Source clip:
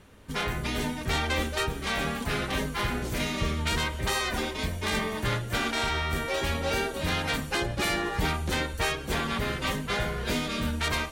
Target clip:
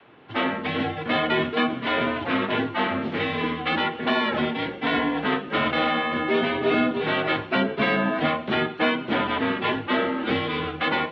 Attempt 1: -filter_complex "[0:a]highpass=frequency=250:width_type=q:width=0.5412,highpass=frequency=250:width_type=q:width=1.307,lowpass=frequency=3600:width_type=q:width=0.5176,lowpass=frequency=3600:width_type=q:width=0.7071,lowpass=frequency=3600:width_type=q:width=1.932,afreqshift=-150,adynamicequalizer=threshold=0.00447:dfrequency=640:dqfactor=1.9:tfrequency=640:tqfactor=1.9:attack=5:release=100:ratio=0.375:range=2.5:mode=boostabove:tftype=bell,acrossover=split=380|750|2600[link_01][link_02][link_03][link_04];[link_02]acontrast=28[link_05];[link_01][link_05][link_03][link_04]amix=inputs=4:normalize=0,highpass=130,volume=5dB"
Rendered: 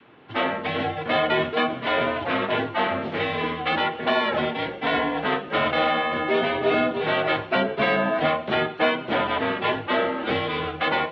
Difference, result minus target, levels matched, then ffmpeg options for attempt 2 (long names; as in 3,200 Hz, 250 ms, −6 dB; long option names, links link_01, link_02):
250 Hz band −4.0 dB
-filter_complex "[0:a]highpass=frequency=250:width_type=q:width=0.5412,highpass=frequency=250:width_type=q:width=1.307,lowpass=frequency=3600:width_type=q:width=0.5176,lowpass=frequency=3600:width_type=q:width=0.7071,lowpass=frequency=3600:width_type=q:width=1.932,afreqshift=-150,adynamicequalizer=threshold=0.00447:dfrequency=250:dqfactor=1.9:tfrequency=250:tqfactor=1.9:attack=5:release=100:ratio=0.375:range=2.5:mode=boostabove:tftype=bell,acrossover=split=380|750|2600[link_01][link_02][link_03][link_04];[link_02]acontrast=28[link_05];[link_01][link_05][link_03][link_04]amix=inputs=4:normalize=0,highpass=130,volume=5dB"